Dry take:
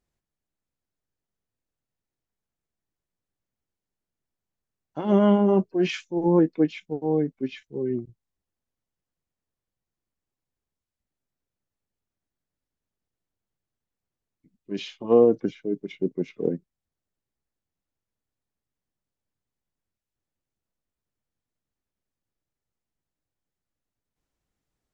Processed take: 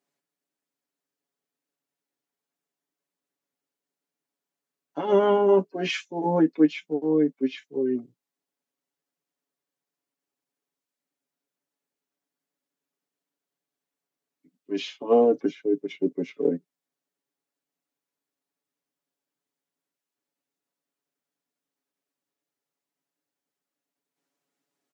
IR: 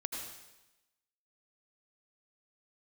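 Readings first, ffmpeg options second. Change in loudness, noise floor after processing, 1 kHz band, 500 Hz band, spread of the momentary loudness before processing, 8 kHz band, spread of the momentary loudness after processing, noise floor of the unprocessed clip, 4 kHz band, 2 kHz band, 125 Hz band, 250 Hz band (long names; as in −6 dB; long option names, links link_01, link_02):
−0.5 dB, below −85 dBFS, +3.0 dB, +0.5 dB, 15 LU, can't be measured, 12 LU, below −85 dBFS, +2.5 dB, +2.5 dB, −7.0 dB, −1.5 dB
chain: -af "highpass=frequency=210:width=0.5412,highpass=frequency=210:width=1.3066,aecho=1:1:7.1:0.87"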